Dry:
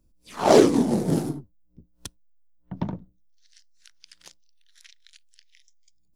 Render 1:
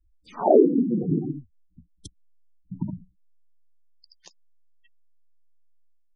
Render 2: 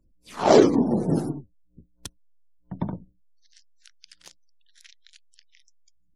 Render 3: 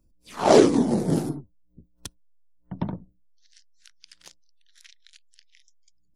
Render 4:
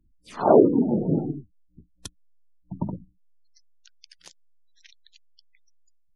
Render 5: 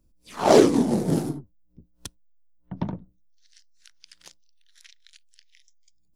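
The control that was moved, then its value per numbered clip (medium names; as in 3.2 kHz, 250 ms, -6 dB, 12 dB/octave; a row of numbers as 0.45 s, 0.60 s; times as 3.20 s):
spectral gate, under each frame's peak: -10 dB, -35 dB, -45 dB, -20 dB, -60 dB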